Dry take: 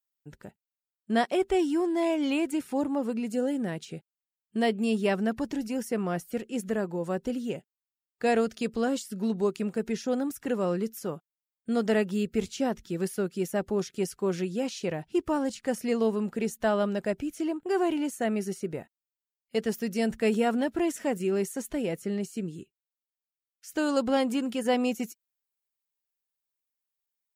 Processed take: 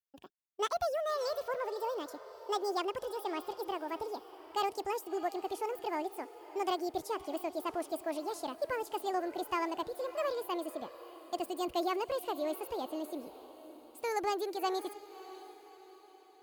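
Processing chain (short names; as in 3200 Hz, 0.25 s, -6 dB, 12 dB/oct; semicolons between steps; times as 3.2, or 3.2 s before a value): speed glide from 186% -> 147%; diffused feedback echo 0.619 s, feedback 47%, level -15 dB; gain -7.5 dB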